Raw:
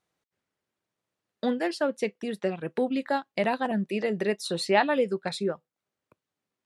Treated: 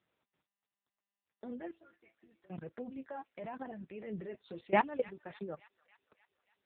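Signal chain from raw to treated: level quantiser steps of 21 dB; air absorption 330 m; flange 0.78 Hz, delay 0.3 ms, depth 9.8 ms, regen +25%; 1.71–2.5 metallic resonator 330 Hz, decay 0.22 s, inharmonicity 0.008; 4.89–5.46 compressor 2.5:1, threshold -38 dBFS, peak gain reduction 10 dB; thin delay 0.288 s, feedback 60%, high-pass 1600 Hz, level -18 dB; gain +5 dB; AMR-NB 6.7 kbps 8000 Hz

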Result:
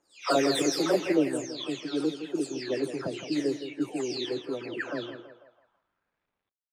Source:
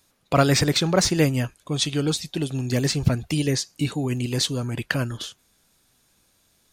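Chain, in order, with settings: spectral delay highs early, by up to 0.466 s; feedback echo 0.165 s, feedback 48%, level -10.5 dB; high-pass sweep 350 Hz -> 3000 Hz, 5.17–6.48; bit-crush 10-bit; low-pass opened by the level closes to 1200 Hz, open at -15.5 dBFS; gain -6.5 dB

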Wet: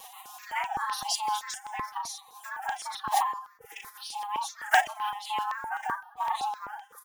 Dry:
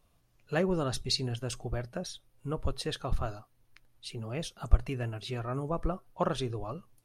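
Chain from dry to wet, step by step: block floating point 7-bit; ring modulator 54 Hz; upward compressor, threshold -34 dBFS; frequency shift +380 Hz; gate with hold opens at -50 dBFS; doubler 38 ms -4 dB; on a send at -22 dB: reverb RT60 0.80 s, pre-delay 0.112 s; on the sum: formant-preserving pitch shift +11 st; bell 4500 Hz -6 dB 0.33 oct; step phaser 7.8 Hz 380–4300 Hz; gain +6.5 dB

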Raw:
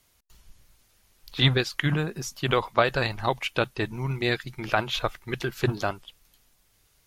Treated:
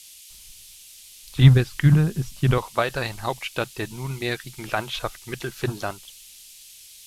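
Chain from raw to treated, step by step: 1.36–2.58 tone controls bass +14 dB, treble -13 dB; band noise 2600–13000 Hz -45 dBFS; gain -1.5 dB

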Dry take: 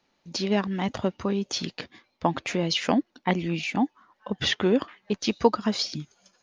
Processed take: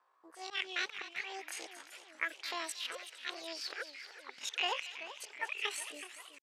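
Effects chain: auto-wah 540–1400 Hz, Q 4.9, up, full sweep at -24 dBFS; pitch shift +11.5 st; auto swell 0.144 s; thin delay 0.23 s, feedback 34%, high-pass 1700 Hz, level -12 dB; warbling echo 0.38 s, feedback 62%, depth 176 cents, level -13 dB; gain +9 dB

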